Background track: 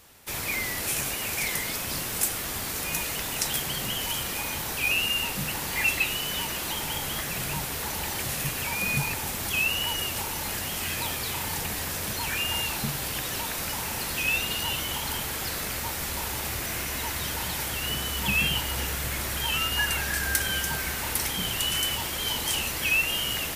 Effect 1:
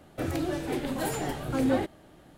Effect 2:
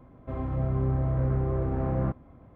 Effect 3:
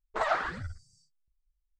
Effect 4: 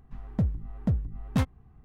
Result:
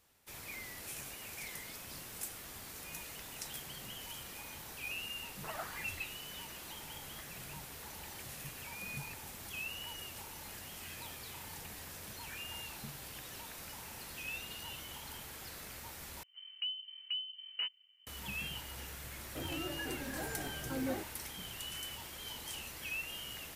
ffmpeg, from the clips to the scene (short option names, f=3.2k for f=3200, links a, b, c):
-filter_complex "[0:a]volume=-16.5dB[a];[4:a]lowpass=f=2.6k:t=q:w=0.5098,lowpass=f=2.6k:t=q:w=0.6013,lowpass=f=2.6k:t=q:w=0.9,lowpass=f=2.6k:t=q:w=2.563,afreqshift=-3100[b];[a]asplit=2[c][d];[c]atrim=end=16.234[e];[b]atrim=end=1.84,asetpts=PTS-STARTPTS,volume=-13.5dB[f];[d]atrim=start=18.066[g];[3:a]atrim=end=1.79,asetpts=PTS-STARTPTS,volume=-15.5dB,afade=t=in:d=0.004:c=hsin,afade=t=out:st=1.786:d=0.004:c=hsin,adelay=5280[h];[1:a]atrim=end=2.37,asetpts=PTS-STARTPTS,volume=-12dB,afade=t=in:d=0.004:c=hsin,afade=t=out:st=2.366:d=0.004:c=hsin,adelay=19170[i];[e][f]acrossfade=d=0.004:c1=hsin:c2=hsin[j];[j][g]acrossfade=d=0.004:c1=hsin:c2=hsin[k];[k][h][i]amix=inputs=3:normalize=0"